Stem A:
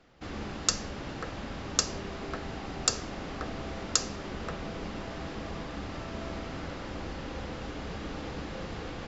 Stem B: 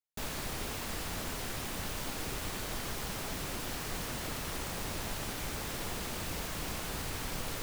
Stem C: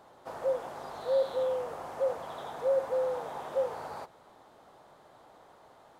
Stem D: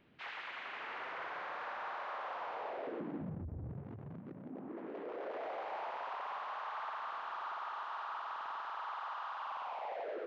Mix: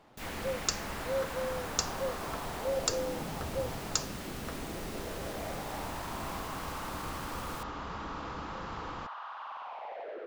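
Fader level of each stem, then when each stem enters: −5.0, −6.5, −6.0, −0.5 decibels; 0.00, 0.00, 0.00, 0.00 seconds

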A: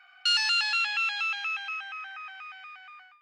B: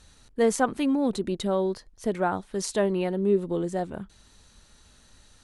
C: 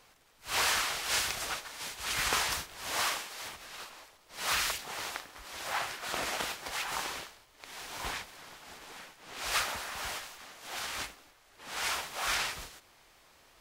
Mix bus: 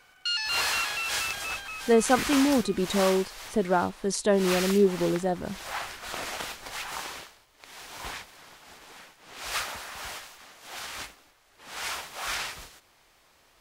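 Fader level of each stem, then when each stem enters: −4.5, +1.5, −0.5 decibels; 0.00, 1.50, 0.00 seconds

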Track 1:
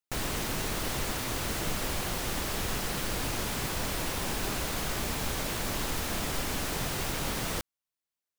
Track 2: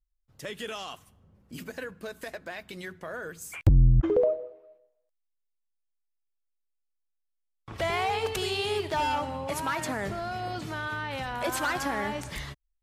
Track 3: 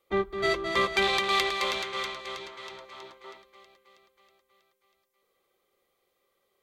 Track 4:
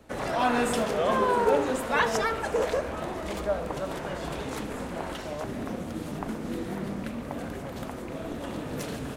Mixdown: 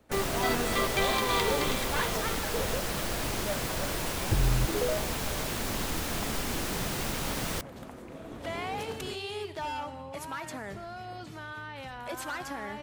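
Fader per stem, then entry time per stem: −0.5, −7.5, −5.0, −8.0 decibels; 0.00, 0.65, 0.00, 0.00 seconds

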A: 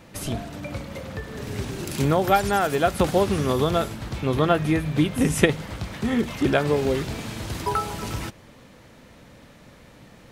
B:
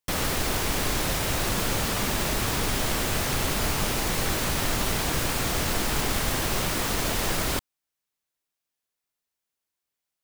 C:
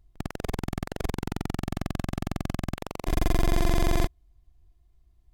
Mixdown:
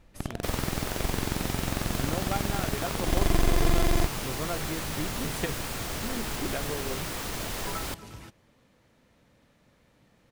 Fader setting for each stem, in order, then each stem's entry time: −14.5, −7.5, −0.5 decibels; 0.00, 0.35, 0.00 seconds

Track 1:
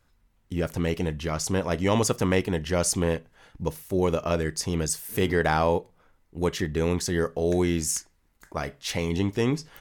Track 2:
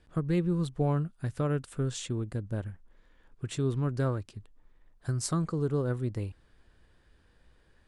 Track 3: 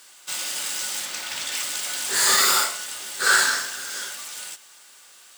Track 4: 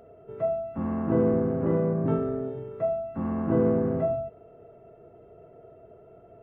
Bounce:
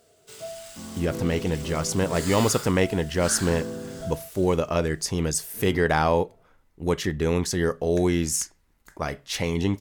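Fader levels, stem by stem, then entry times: +1.5 dB, muted, −16.5 dB, −10.5 dB; 0.45 s, muted, 0.00 s, 0.00 s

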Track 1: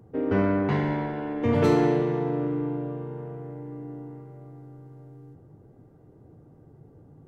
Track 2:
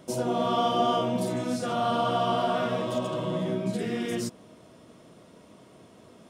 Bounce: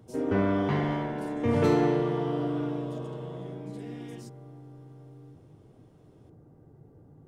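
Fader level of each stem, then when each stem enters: −2.5, −15.5 decibels; 0.00, 0.00 seconds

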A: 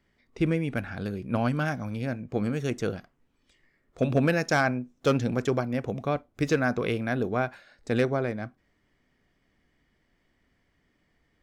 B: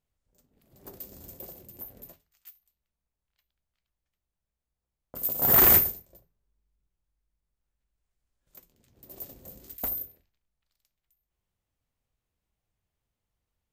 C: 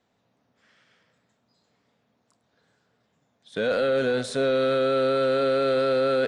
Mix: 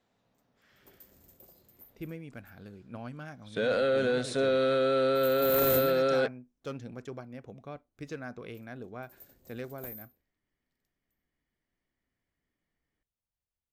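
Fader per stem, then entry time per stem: −15.5, −13.0, −3.5 decibels; 1.60, 0.00, 0.00 seconds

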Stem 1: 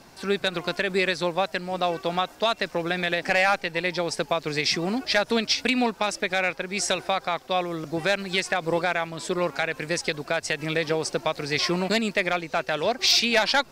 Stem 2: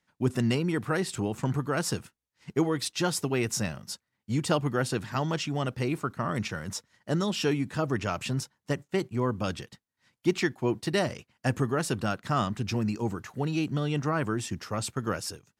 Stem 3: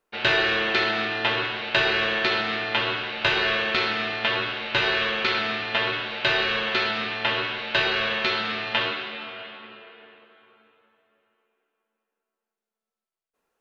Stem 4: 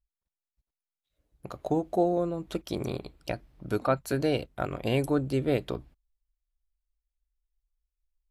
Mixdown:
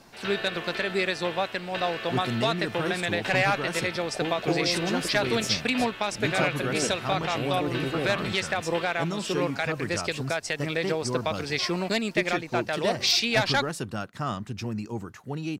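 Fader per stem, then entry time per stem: −3.0, −3.5, −13.5, −5.0 decibels; 0.00, 1.90, 0.00, 2.50 seconds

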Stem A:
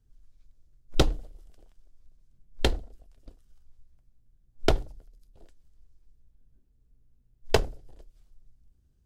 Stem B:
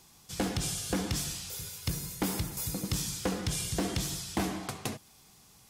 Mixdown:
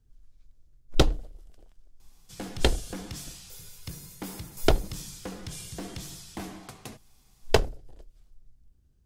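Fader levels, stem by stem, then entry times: +1.5, −7.0 decibels; 0.00, 2.00 seconds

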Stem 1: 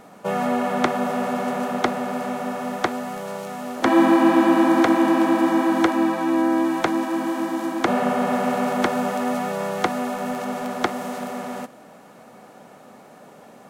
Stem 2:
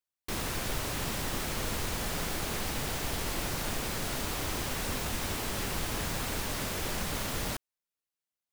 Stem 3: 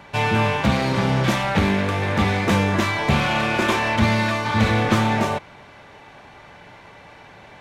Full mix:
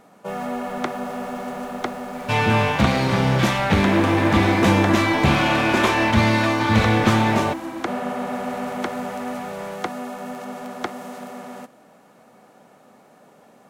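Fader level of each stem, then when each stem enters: −5.5, −18.0, +1.0 decibels; 0.00, 0.00, 2.15 seconds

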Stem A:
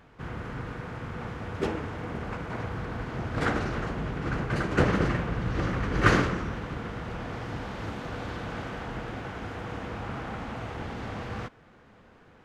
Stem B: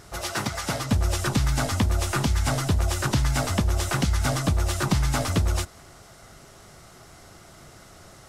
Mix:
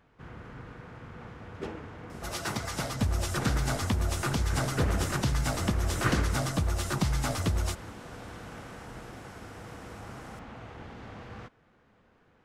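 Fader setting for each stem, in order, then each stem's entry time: −8.5, −5.5 decibels; 0.00, 2.10 seconds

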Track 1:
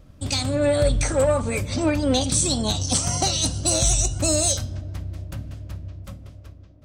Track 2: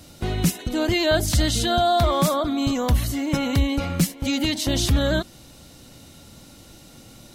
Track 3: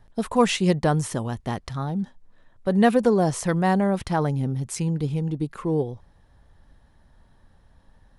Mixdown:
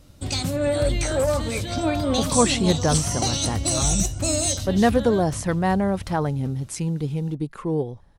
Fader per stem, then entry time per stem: −2.5, −11.5, −0.5 decibels; 0.00, 0.00, 2.00 seconds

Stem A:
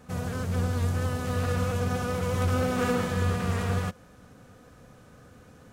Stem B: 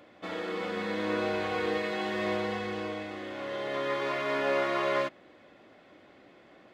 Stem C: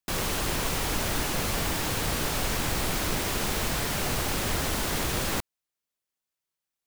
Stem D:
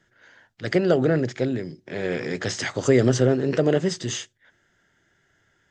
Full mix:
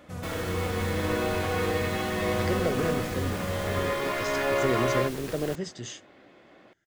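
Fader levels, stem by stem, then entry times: −5.5, +1.5, −12.5, −10.0 decibels; 0.00, 0.00, 0.15, 1.75 seconds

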